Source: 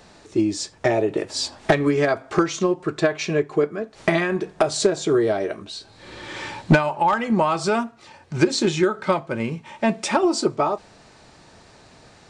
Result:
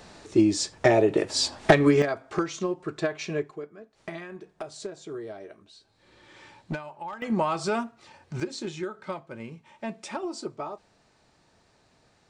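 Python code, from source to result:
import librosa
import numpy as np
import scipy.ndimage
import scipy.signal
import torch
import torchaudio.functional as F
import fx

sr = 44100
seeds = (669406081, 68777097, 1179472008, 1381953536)

y = fx.gain(x, sr, db=fx.steps((0.0, 0.5), (2.02, -8.0), (3.51, -18.0), (7.22, -6.0), (8.4, -14.0)))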